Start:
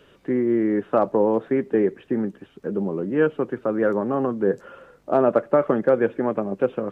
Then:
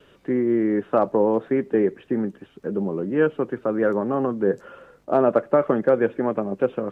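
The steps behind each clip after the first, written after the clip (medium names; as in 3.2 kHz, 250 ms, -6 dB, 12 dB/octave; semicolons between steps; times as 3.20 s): gate with hold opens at -47 dBFS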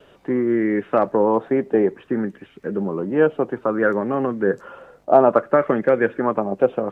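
sweeping bell 0.6 Hz 680–2200 Hz +9 dB; trim +1 dB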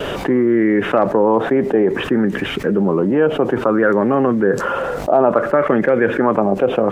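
level flattener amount 70%; trim -2 dB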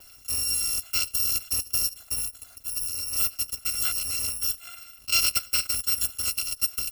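bit-reversed sample order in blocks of 256 samples; upward expansion 2.5:1, over -23 dBFS; trim -8 dB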